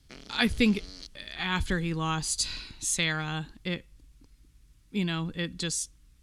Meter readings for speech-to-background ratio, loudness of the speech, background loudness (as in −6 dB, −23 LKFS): 17.0 dB, −30.0 LKFS, −47.0 LKFS